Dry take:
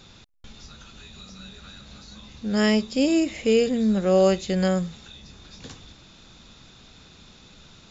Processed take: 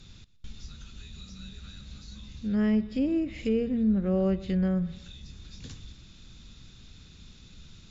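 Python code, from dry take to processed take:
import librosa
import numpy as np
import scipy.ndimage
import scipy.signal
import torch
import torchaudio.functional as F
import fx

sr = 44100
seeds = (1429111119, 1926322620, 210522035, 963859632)

y = fx.peak_eq(x, sr, hz=750.0, db=-10.5, octaves=1.9)
y = fx.echo_feedback(y, sr, ms=121, feedback_pct=44, wet_db=-19.5)
y = fx.env_lowpass_down(y, sr, base_hz=1400.0, full_db=-22.0)
y = fx.low_shelf(y, sr, hz=130.0, db=10.0)
y = F.gain(torch.from_numpy(y), -3.5).numpy()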